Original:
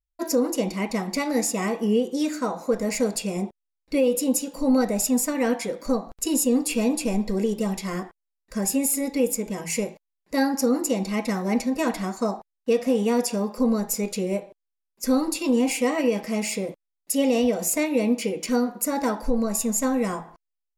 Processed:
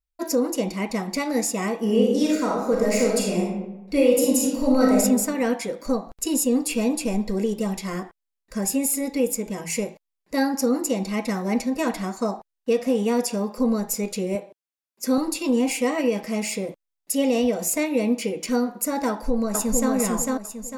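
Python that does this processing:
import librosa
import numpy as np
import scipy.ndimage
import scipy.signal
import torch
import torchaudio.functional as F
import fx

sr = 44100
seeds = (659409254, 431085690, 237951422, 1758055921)

y = fx.reverb_throw(x, sr, start_s=1.8, length_s=3.18, rt60_s=1.0, drr_db=-2.0)
y = fx.highpass(y, sr, hz=140.0, slope=12, at=(14.35, 15.18))
y = fx.echo_throw(y, sr, start_s=19.09, length_s=0.83, ms=450, feedback_pct=35, wet_db=-1.5)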